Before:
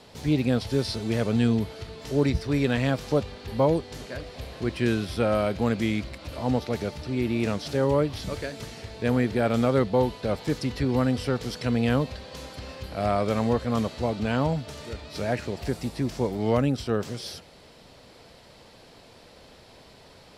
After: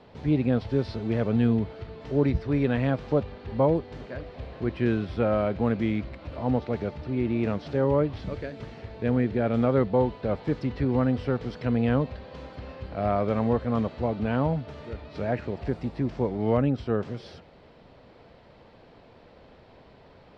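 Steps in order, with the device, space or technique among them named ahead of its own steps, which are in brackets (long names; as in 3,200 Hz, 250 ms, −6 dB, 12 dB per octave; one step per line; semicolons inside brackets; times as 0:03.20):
phone in a pocket (low-pass filter 3,300 Hz 12 dB per octave; high-shelf EQ 2,300 Hz −8.5 dB)
0:08.22–0:09.57: dynamic equaliser 1,000 Hz, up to −4 dB, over −42 dBFS, Q 1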